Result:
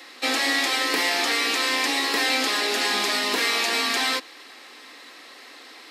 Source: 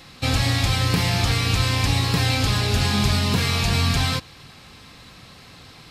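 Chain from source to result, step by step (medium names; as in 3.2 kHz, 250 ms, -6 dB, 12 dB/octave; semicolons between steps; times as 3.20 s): steep high-pass 270 Hz 48 dB/octave; peaking EQ 1.9 kHz +8.5 dB 0.23 oct; trim +1 dB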